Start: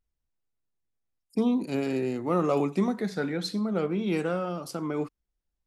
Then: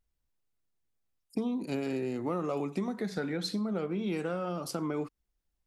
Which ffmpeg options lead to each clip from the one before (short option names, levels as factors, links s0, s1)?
-af "acompressor=threshold=0.0282:ratio=6,volume=1.19"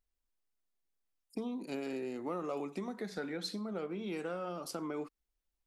-af "equalizer=f=110:w=1.1:g=-12.5,volume=0.631"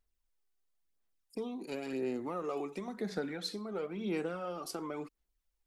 -af "aphaser=in_gain=1:out_gain=1:delay=2.7:decay=0.44:speed=0.96:type=sinusoidal"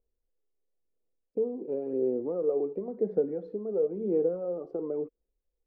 -af "lowpass=f=480:t=q:w=4.4"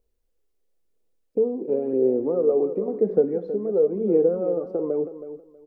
-af "aecho=1:1:321|642|963:0.251|0.0527|0.0111,volume=2.37"